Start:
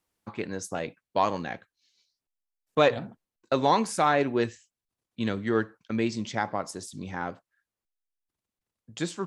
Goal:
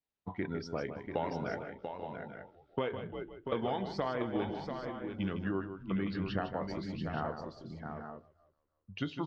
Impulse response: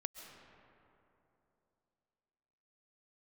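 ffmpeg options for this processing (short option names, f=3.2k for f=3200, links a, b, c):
-filter_complex "[0:a]asplit=2[a][b];[b]adelay=27,volume=-13dB[c];[a][c]amix=inputs=2:normalize=0,asplit=2[d][e];[e]asplit=3[f][g][h];[f]adelay=335,afreqshift=-82,volume=-20dB[i];[g]adelay=670,afreqshift=-164,volume=-28.2dB[j];[h]adelay=1005,afreqshift=-246,volume=-36.4dB[k];[i][j][k]amix=inputs=3:normalize=0[l];[d][l]amix=inputs=2:normalize=0,adynamicequalizer=threshold=0.00447:dfrequency=1500:dqfactor=4:tfrequency=1500:tqfactor=4:attack=5:release=100:ratio=0.375:range=2:mode=cutabove:tftype=bell,lowpass=f=5.4k:w=0.5412,lowpass=f=5.4k:w=1.3066,asetrate=38170,aresample=44100,atempo=1.15535,afftdn=nr=13:nf=-42,acompressor=threshold=-30dB:ratio=10,asplit=2[m][n];[n]aecho=0:1:156|689|838|873:0.335|0.447|0.211|0.282[o];[m][o]amix=inputs=2:normalize=0,volume=-1dB"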